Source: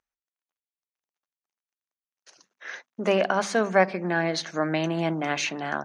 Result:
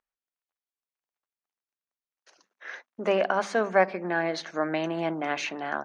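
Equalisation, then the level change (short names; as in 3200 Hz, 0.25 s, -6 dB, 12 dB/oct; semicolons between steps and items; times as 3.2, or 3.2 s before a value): bell 110 Hz -13 dB 1.6 oct; high shelf 3800 Hz -11 dB; 0.0 dB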